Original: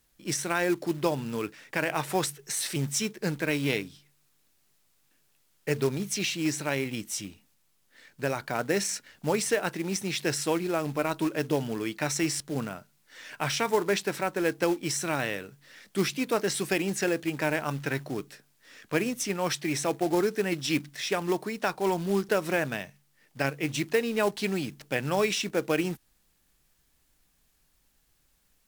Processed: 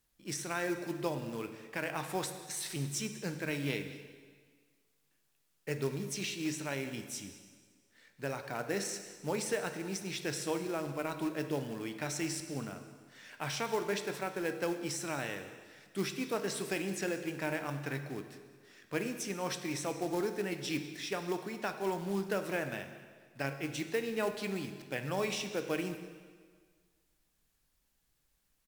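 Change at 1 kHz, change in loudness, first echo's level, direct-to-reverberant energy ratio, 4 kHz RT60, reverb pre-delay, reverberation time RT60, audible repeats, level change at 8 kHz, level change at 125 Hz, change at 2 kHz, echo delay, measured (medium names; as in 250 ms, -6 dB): -7.5 dB, -7.5 dB, -20.5 dB, 7.5 dB, 1.6 s, 7 ms, 1.7 s, 1, -8.0 dB, -7.0 dB, -7.5 dB, 193 ms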